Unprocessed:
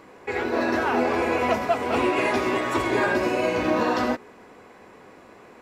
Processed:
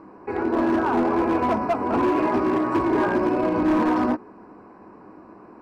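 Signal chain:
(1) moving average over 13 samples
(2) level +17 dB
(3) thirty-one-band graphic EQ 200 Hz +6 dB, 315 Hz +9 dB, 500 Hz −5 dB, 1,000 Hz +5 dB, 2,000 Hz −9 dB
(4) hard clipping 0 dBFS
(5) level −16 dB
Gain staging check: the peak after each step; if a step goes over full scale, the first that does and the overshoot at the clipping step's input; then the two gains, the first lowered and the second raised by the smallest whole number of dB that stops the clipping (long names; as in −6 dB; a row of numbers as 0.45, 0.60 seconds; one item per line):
−10.5, +6.5, +9.5, 0.0, −16.0 dBFS
step 2, 9.5 dB
step 2 +7 dB, step 5 −6 dB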